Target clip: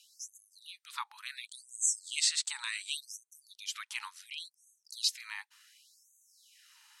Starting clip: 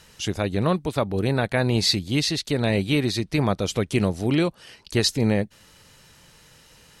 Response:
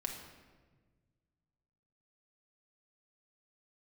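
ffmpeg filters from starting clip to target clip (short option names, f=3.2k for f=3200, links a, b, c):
-filter_complex "[0:a]aeval=exprs='0.398*(cos(1*acos(clip(val(0)/0.398,-1,1)))-cos(1*PI/2))+0.00708*(cos(4*acos(clip(val(0)/0.398,-1,1)))-cos(4*PI/2))':c=same,asettb=1/sr,asplit=3[a][b][c];[a]atrim=end=1.474[d];[b]atrim=start=1.47:end=2.97,asetpts=PTS-STARTPTS,afade=t=in:d=0.004:c=qsin,afade=t=out:st=1.496:d=0.004:c=qsin,lowpass=f=8k:t=q:w=7.9[e];[c]atrim=start=2.966[f];[d][e]acrossfade=d=0.004:c1=hsin:c2=qsin[g];[g][f]acrossfade=d=0.004:c1=qsin:c2=hsin,afftfilt=real='re*gte(b*sr/1024,800*pow(6100/800,0.5+0.5*sin(2*PI*0.69*pts/sr)))':imag='im*gte(b*sr/1024,800*pow(6100/800,0.5+0.5*sin(2*PI*0.69*pts/sr)))':win_size=1024:overlap=0.75,volume=-7dB"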